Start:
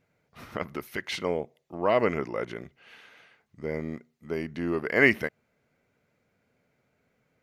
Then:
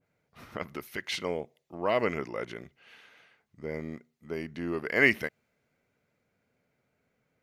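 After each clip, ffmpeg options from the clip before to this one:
-af "adynamicequalizer=threshold=0.0126:dfrequency=1900:dqfactor=0.7:tfrequency=1900:tqfactor=0.7:attack=5:release=100:ratio=0.375:range=2.5:mode=boostabove:tftype=highshelf,volume=0.631"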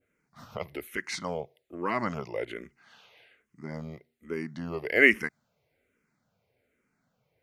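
-filter_complex "[0:a]asplit=2[s0][s1];[s1]afreqshift=-1.2[s2];[s0][s2]amix=inputs=2:normalize=1,volume=1.5"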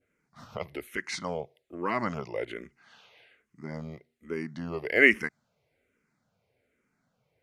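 -af "lowpass=11000"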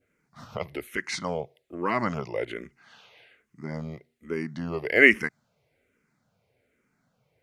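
-af "equalizer=f=130:t=o:w=0.77:g=2,volume=1.41"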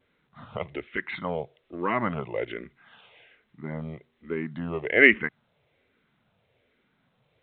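-ar 8000 -c:a pcm_alaw

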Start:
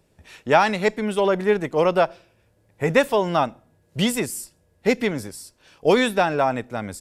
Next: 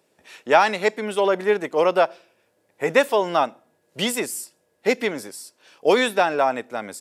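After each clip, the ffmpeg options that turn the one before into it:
-af "highpass=310,volume=1.12"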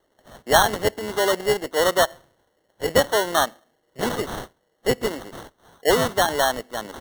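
-af "lowshelf=f=190:g=-9.5,acrusher=samples=18:mix=1:aa=0.000001"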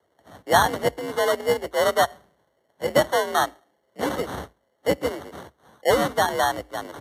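-af "equalizer=f=6800:w=0.36:g=-5,afreqshift=55" -ar 32000 -c:a libmp3lame -b:a 80k

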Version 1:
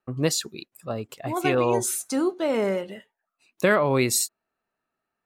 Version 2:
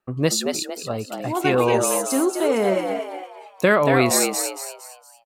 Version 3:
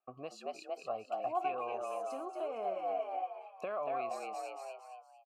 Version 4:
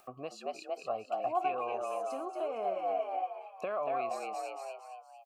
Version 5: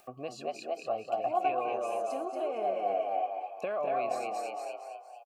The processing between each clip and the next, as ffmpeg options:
-filter_complex "[0:a]asplit=6[s0][s1][s2][s3][s4][s5];[s1]adelay=230,afreqshift=91,volume=0.562[s6];[s2]adelay=460,afreqshift=182,volume=0.219[s7];[s3]adelay=690,afreqshift=273,volume=0.0851[s8];[s4]adelay=920,afreqshift=364,volume=0.0335[s9];[s5]adelay=1150,afreqshift=455,volume=0.013[s10];[s0][s6][s7][s8][s9][s10]amix=inputs=6:normalize=0,volume=1.41"
-filter_complex "[0:a]bandreject=f=3600:w=6,acompressor=threshold=0.0562:ratio=6,asplit=3[s0][s1][s2];[s0]bandpass=f=730:t=q:w=8,volume=1[s3];[s1]bandpass=f=1090:t=q:w=8,volume=0.501[s4];[s2]bandpass=f=2440:t=q:w=8,volume=0.355[s5];[s3][s4][s5]amix=inputs=3:normalize=0,volume=1.12"
-af "acompressor=mode=upward:threshold=0.00355:ratio=2.5,volume=1.41"
-filter_complex "[0:a]equalizer=f=1000:t=o:w=0.22:g=-8.5,bandreject=f=1300:w=7.4,asplit=2[s0][s1];[s1]adelay=205,lowpass=f=1400:p=1,volume=0.531,asplit=2[s2][s3];[s3]adelay=205,lowpass=f=1400:p=1,volume=0.23,asplit=2[s4][s5];[s5]adelay=205,lowpass=f=1400:p=1,volume=0.23[s6];[s0][s2][s4][s6]amix=inputs=4:normalize=0,volume=1.33"

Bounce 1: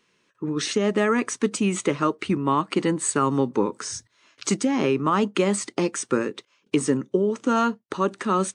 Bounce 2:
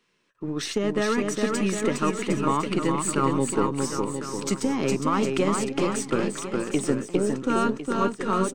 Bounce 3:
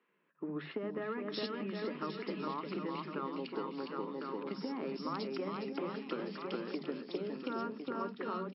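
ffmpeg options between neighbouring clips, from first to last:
-filter_complex "[0:a]aeval=exprs='if(lt(val(0),0),0.708*val(0),val(0))':c=same,bandreject=f=6500:w=17,asplit=2[s0][s1];[s1]aecho=0:1:410|758.5|1055|1307|1521:0.631|0.398|0.251|0.158|0.1[s2];[s0][s2]amix=inputs=2:normalize=0,volume=0.794"
-filter_complex "[0:a]acompressor=threshold=0.0355:ratio=10,afftfilt=real='re*between(b*sr/4096,150,5500)':imag='im*between(b*sr/4096,150,5500)':win_size=4096:overlap=0.75,acrossover=split=200|2500[s0][s1][s2];[s0]adelay=70[s3];[s2]adelay=730[s4];[s3][s1][s4]amix=inputs=3:normalize=0,volume=0.631"

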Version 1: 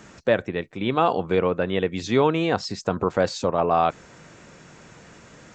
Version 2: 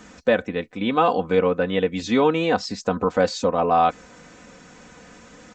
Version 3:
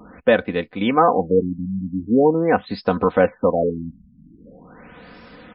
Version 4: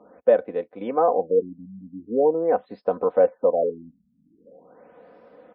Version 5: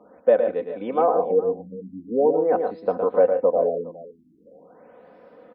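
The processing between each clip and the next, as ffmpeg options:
-af "aecho=1:1:4:0.65"
-af "afftfilt=real='re*lt(b*sr/1024,250*pow(5500/250,0.5+0.5*sin(2*PI*0.43*pts/sr)))':imag='im*lt(b*sr/1024,250*pow(5500/250,0.5+0.5*sin(2*PI*0.43*pts/sr)))':win_size=1024:overlap=0.75,volume=1.5"
-af "bandpass=f=560:t=q:w=2.2:csg=0"
-af "aecho=1:1:113|143|412:0.473|0.251|0.119"

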